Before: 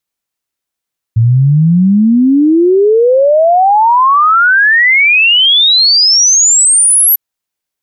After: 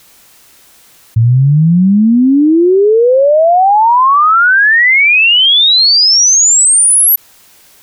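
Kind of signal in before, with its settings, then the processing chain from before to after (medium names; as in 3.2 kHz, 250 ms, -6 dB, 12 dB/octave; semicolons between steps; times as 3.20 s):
log sweep 110 Hz -> 12 kHz 6.00 s -4.5 dBFS
level flattener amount 50%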